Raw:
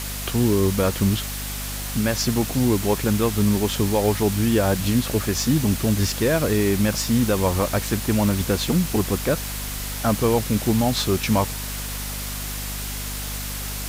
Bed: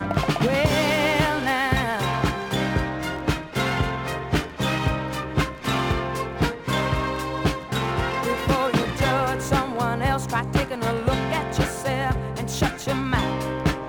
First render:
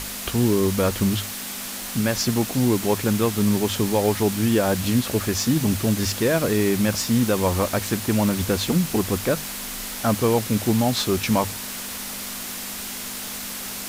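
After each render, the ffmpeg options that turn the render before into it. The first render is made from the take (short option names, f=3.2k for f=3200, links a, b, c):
-af "bandreject=f=50:t=h:w=6,bandreject=f=100:t=h:w=6,bandreject=f=150:t=h:w=6"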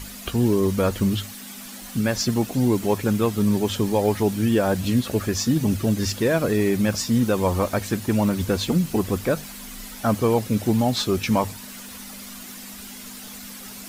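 -af "afftdn=nr=10:nf=-33"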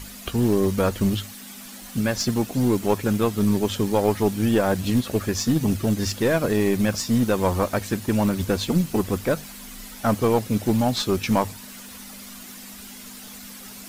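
-af "aeval=exprs='0.376*(cos(1*acos(clip(val(0)/0.376,-1,1)))-cos(1*PI/2))+0.0596*(cos(2*acos(clip(val(0)/0.376,-1,1)))-cos(2*PI/2))+0.0106*(cos(7*acos(clip(val(0)/0.376,-1,1)))-cos(7*PI/2))':c=same"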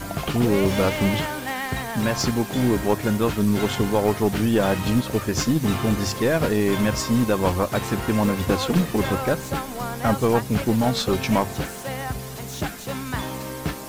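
-filter_complex "[1:a]volume=-6dB[a];[0:a][a]amix=inputs=2:normalize=0"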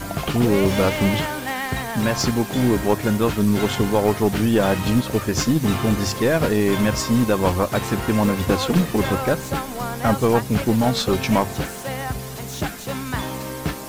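-af "volume=2dB"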